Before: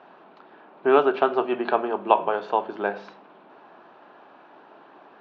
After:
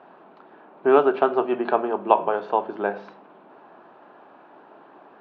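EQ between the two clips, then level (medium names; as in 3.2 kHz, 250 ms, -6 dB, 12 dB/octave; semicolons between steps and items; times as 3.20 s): treble shelf 2.3 kHz -9.5 dB; +2.0 dB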